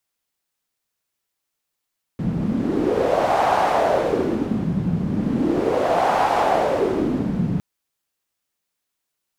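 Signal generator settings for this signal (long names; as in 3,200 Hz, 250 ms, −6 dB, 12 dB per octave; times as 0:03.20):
wind from filtered noise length 5.41 s, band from 170 Hz, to 800 Hz, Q 3.6, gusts 2, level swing 5 dB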